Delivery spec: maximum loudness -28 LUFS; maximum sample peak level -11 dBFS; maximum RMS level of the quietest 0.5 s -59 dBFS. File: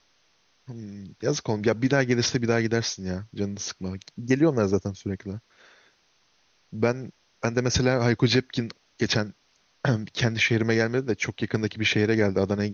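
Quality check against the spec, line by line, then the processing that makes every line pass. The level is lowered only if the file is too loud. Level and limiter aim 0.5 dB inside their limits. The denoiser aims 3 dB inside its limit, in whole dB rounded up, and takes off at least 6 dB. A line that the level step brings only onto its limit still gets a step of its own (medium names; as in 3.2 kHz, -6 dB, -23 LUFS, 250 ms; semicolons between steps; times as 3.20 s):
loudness -25.5 LUFS: fail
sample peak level -7.0 dBFS: fail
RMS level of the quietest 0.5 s -65 dBFS: pass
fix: trim -3 dB; peak limiter -11.5 dBFS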